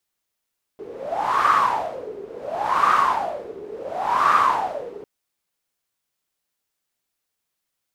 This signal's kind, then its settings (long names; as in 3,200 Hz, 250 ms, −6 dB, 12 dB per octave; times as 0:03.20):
wind from filtered noise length 4.25 s, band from 410 Hz, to 1,200 Hz, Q 11, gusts 3, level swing 19.5 dB